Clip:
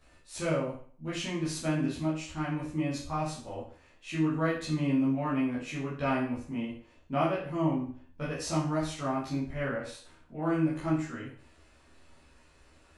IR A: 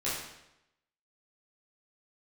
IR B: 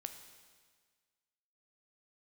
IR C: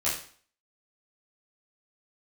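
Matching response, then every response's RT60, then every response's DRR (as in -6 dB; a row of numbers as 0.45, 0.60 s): C; 0.85, 1.6, 0.45 s; -10.0, 6.5, -9.5 dB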